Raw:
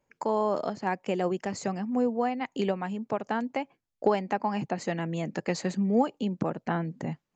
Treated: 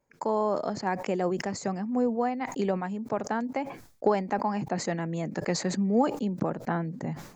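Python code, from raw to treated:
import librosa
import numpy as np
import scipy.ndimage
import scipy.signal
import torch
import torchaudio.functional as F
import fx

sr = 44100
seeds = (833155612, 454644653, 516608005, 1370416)

y = fx.peak_eq(x, sr, hz=2900.0, db=-7.5, octaves=0.54)
y = fx.sustainer(y, sr, db_per_s=96.0)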